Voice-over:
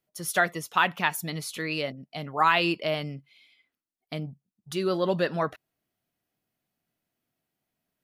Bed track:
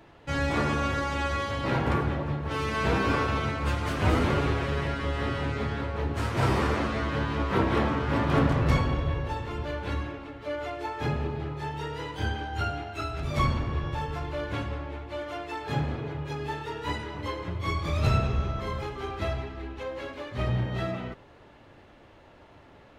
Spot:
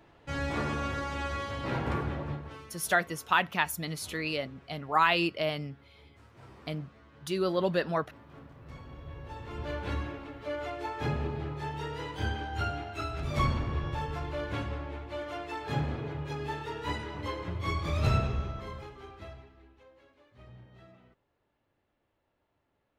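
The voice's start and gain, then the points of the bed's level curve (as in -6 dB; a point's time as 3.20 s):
2.55 s, -2.5 dB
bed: 2.34 s -5.5 dB
2.82 s -28 dB
8.54 s -28 dB
9.71 s -2.5 dB
18.17 s -2.5 dB
20.02 s -24.5 dB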